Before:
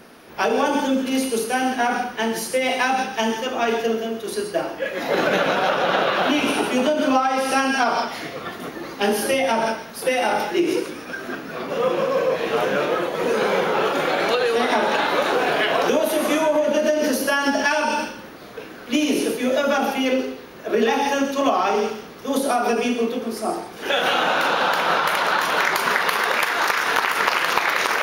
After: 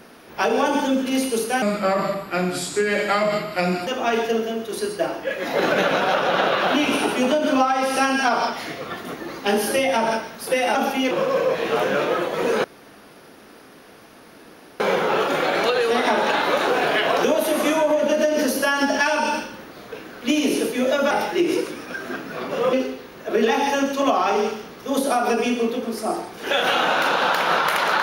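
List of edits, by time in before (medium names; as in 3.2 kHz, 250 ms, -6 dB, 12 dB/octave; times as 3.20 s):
1.62–3.42 s: speed 80%
10.30–11.92 s: swap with 19.76–20.12 s
13.45 s: insert room tone 2.16 s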